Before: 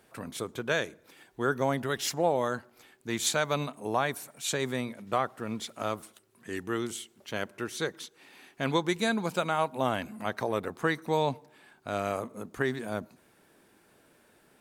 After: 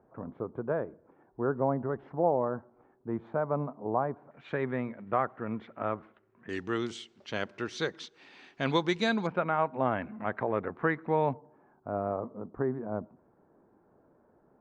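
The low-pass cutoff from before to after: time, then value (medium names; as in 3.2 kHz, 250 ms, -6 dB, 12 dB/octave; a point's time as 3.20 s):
low-pass 24 dB/octave
1.1 kHz
from 4.31 s 2 kHz
from 6.49 s 5.5 kHz
from 9.27 s 2.1 kHz
from 11.33 s 1.1 kHz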